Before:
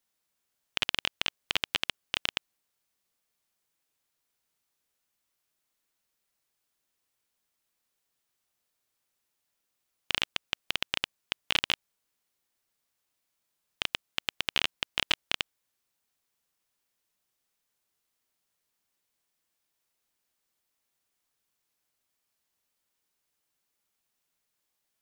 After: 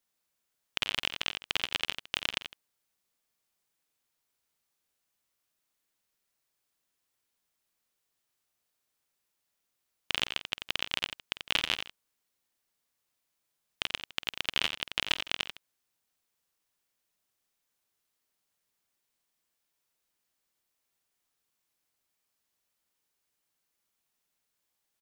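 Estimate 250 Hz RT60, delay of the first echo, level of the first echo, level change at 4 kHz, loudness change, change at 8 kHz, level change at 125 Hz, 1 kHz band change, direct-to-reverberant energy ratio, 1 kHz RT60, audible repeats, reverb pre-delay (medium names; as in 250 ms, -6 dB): no reverb, 49 ms, -15.5 dB, -0.5 dB, -1.0 dB, -0.5 dB, -0.5 dB, -1.0 dB, no reverb, no reverb, 3, no reverb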